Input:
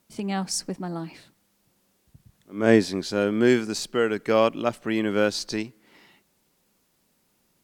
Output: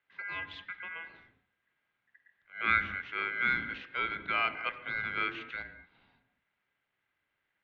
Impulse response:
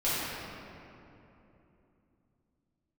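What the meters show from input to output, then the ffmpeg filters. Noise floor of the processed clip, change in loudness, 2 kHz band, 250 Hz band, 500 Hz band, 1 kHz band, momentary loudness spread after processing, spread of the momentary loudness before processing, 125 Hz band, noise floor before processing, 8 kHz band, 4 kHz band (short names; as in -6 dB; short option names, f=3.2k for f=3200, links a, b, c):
-83 dBFS, -8.5 dB, +1.5 dB, -24.5 dB, -25.0 dB, -4.0 dB, 14 LU, 13 LU, -18.0 dB, -69 dBFS, under -40 dB, -9.5 dB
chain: -filter_complex "[0:a]aeval=exprs='val(0)*sin(2*PI*1900*n/s)':c=same,highpass=f=180:t=q:w=0.5412,highpass=f=180:t=q:w=1.307,lowpass=f=3.6k:t=q:w=0.5176,lowpass=f=3.6k:t=q:w=0.7071,lowpass=f=3.6k:t=q:w=1.932,afreqshift=-89,asplit=2[a][b];[b]aemphasis=mode=reproduction:type=riaa[c];[1:a]atrim=start_sample=2205,afade=t=out:st=0.25:d=0.01,atrim=end_sample=11466,asetrate=37926,aresample=44100[d];[c][d]afir=irnorm=-1:irlink=0,volume=-18.5dB[e];[a][e]amix=inputs=2:normalize=0,volume=-8.5dB"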